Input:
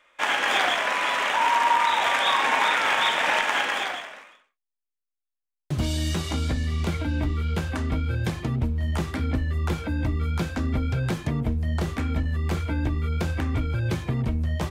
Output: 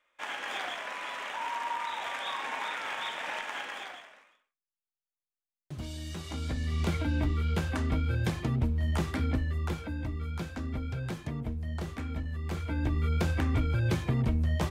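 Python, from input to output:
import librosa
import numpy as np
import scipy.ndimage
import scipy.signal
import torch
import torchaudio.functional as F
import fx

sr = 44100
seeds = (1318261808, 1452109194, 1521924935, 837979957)

y = fx.gain(x, sr, db=fx.line((6.08, -13.5), (6.84, -3.0), (9.23, -3.0), (10.03, -9.5), (12.43, -9.5), (13.03, -2.0)))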